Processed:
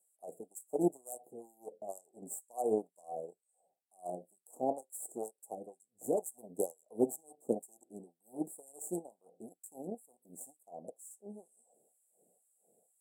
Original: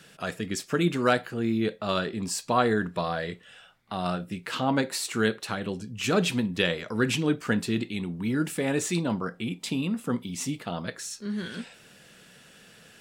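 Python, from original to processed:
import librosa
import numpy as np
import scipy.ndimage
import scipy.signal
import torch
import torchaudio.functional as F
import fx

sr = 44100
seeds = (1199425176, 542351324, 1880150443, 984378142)

y = fx.cheby_harmonics(x, sr, harmonics=(4, 7, 8), levels_db=(-27, -19, -34), full_scale_db=-7.5)
y = fx.filter_lfo_highpass(y, sr, shape='sine', hz=2.1, low_hz=320.0, high_hz=3000.0, q=0.92)
y = scipy.signal.sosfilt(scipy.signal.cheby1(5, 1.0, [770.0, 7700.0], 'bandstop', fs=sr, output='sos'), y)
y = F.gain(torch.from_numpy(y), 2.0).numpy()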